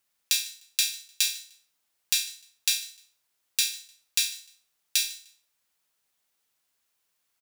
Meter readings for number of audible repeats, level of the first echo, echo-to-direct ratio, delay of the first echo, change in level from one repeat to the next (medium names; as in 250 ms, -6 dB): 2, -22.0 dB, -21.5 dB, 151 ms, -11.5 dB